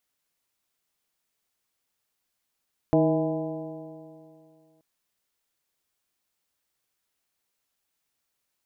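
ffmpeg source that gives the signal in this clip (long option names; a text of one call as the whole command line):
ffmpeg -f lavfi -i "aevalsrc='0.0668*pow(10,-3*t/2.48)*sin(2*PI*156.31*t)+0.106*pow(10,-3*t/2.48)*sin(2*PI*314.49*t)+0.0596*pow(10,-3*t/2.48)*sin(2*PI*476.35*t)+0.0841*pow(10,-3*t/2.48)*sin(2*PI*643.66*t)+0.0299*pow(10,-3*t/2.48)*sin(2*PI*818.07*t)+0.0119*pow(10,-3*t/2.48)*sin(2*PI*1001.13*t)':duration=1.88:sample_rate=44100" out.wav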